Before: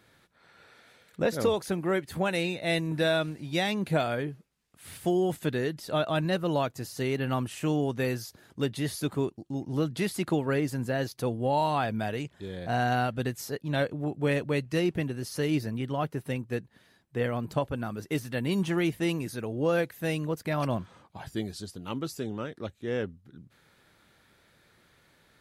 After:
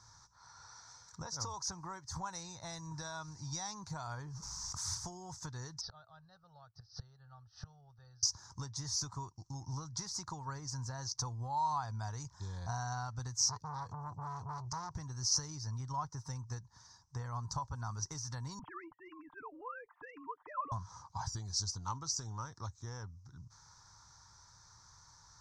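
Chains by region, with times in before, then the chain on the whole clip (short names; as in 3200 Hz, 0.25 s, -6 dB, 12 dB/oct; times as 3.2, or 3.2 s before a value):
4.3–4.95 high shelf 7000 Hz +7 dB + fast leveller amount 70%
5.81–8.23 LPF 4700 Hz 24 dB/oct + flipped gate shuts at -28 dBFS, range -24 dB + fixed phaser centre 1500 Hz, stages 8
13.38–14.95 tone controls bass +7 dB, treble 0 dB + compressor 2:1, threshold -32 dBFS + core saturation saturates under 1200 Hz
18.59–20.72 sine-wave speech + comb 6.7 ms, depth 43%
whole clip: compressor 6:1, threshold -36 dBFS; EQ curve 110 Hz 0 dB, 220 Hz -19 dB, 390 Hz -22 dB, 620 Hz -19 dB, 960 Hz +5 dB, 2800 Hz -28 dB, 5800 Hz +15 dB, 11000 Hz -25 dB; gain +5.5 dB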